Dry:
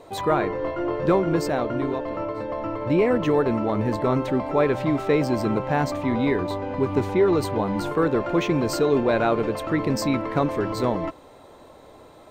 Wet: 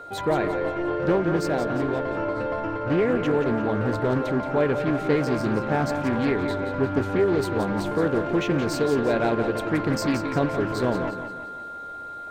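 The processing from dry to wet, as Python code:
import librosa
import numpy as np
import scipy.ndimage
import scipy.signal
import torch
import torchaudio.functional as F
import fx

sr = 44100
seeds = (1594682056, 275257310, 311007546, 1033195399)

p1 = fx.peak_eq(x, sr, hz=1200.0, db=-13.0, octaves=0.24)
p2 = fx.rider(p1, sr, range_db=10, speed_s=0.5)
p3 = p1 + (p2 * librosa.db_to_amplitude(-2.0))
p4 = p3 + 10.0 ** (-32.0 / 20.0) * np.sin(2.0 * np.pi * 1400.0 * np.arange(len(p3)) / sr)
p5 = fx.echo_feedback(p4, sr, ms=175, feedback_pct=47, wet_db=-9.0)
p6 = fx.doppler_dist(p5, sr, depth_ms=0.25)
y = p6 * librosa.db_to_amplitude(-6.5)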